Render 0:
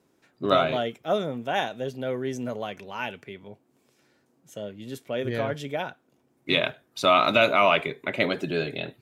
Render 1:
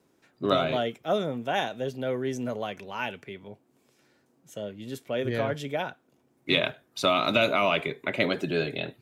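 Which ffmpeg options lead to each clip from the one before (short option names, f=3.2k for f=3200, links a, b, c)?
-filter_complex "[0:a]acrossover=split=480|3000[a][b][c];[b]acompressor=threshold=-24dB:ratio=6[d];[a][d][c]amix=inputs=3:normalize=0"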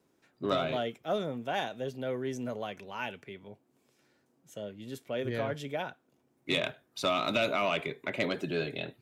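-af "asoftclip=type=tanh:threshold=-13.5dB,volume=-4.5dB"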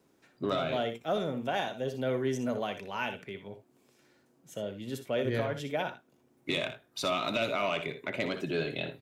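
-filter_complex "[0:a]alimiter=level_in=1dB:limit=-24dB:level=0:latency=1:release=455,volume=-1dB,asplit=2[a][b];[b]aecho=0:1:61|78:0.299|0.158[c];[a][c]amix=inputs=2:normalize=0,volume=3.5dB"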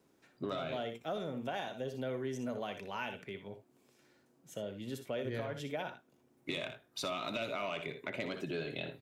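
-af "acompressor=threshold=-34dB:ratio=2.5,volume=-2.5dB"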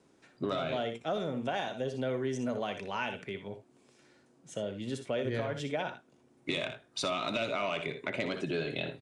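-af "aresample=22050,aresample=44100,volume=5dB"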